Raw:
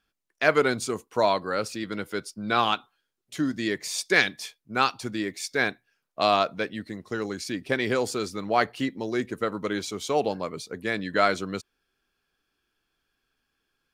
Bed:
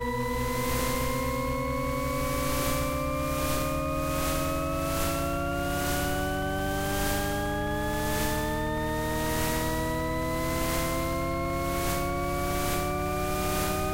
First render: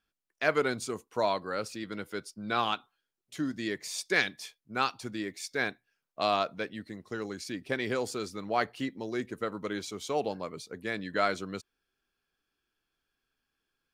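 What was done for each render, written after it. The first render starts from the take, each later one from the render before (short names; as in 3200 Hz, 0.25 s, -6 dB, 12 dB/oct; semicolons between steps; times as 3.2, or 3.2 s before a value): gain -6 dB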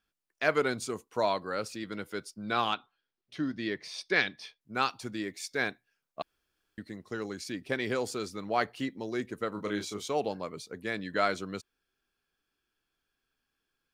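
2.74–4.61 polynomial smoothing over 15 samples; 6.22–6.78 room tone; 9.53–10.08 doubler 29 ms -6 dB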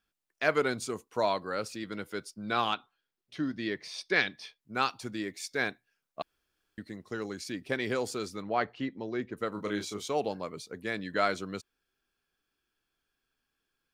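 8.42–9.37 air absorption 180 m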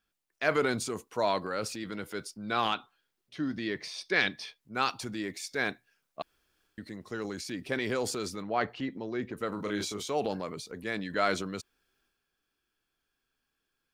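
transient shaper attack -1 dB, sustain +6 dB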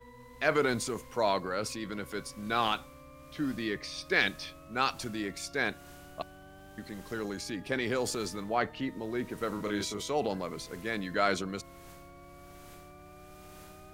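add bed -22.5 dB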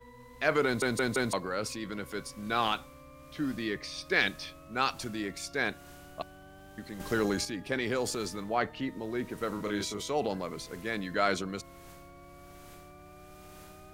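0.65 stutter in place 0.17 s, 4 plays; 7–7.45 gain +7.5 dB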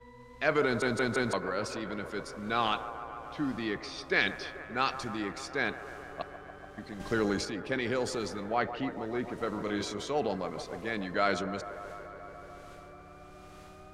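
air absorption 57 m; band-limited delay 0.144 s, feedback 83%, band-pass 790 Hz, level -11.5 dB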